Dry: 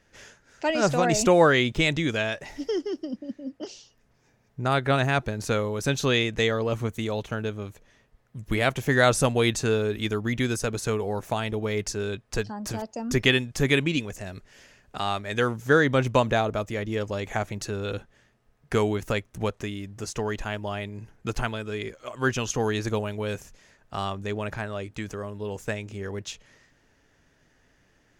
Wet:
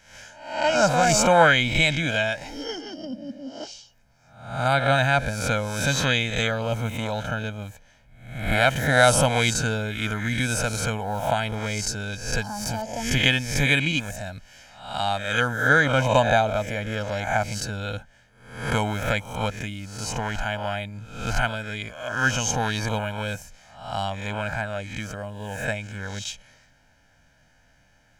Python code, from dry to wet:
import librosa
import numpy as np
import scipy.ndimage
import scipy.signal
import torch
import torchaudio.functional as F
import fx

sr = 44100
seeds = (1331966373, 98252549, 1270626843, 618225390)

y = fx.spec_swells(x, sr, rise_s=0.62)
y = fx.low_shelf(y, sr, hz=370.0, db=-2.5)
y = y + 0.79 * np.pad(y, (int(1.3 * sr / 1000.0), 0))[:len(y)]